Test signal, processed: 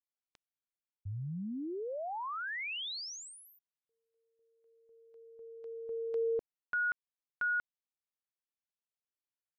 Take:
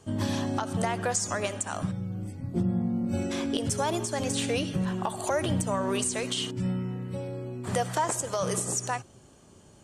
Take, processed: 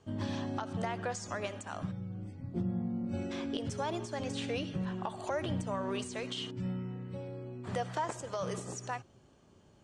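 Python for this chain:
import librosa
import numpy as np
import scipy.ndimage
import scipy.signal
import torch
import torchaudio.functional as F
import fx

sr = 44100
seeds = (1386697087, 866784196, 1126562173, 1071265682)

y = scipy.signal.sosfilt(scipy.signal.butter(2, 4700.0, 'lowpass', fs=sr, output='sos'), x)
y = F.gain(torch.from_numpy(y), -7.0).numpy()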